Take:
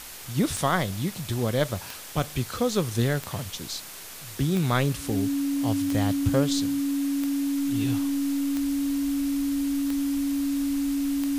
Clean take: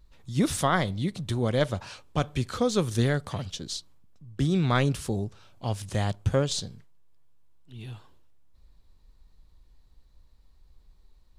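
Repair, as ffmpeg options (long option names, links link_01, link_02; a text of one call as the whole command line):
ffmpeg -i in.wav -af "adeclick=threshold=4,bandreject=frequency=280:width=30,afwtdn=0.01,asetnsamples=nb_out_samples=441:pad=0,asendcmd='7.58 volume volume -9.5dB',volume=0dB" out.wav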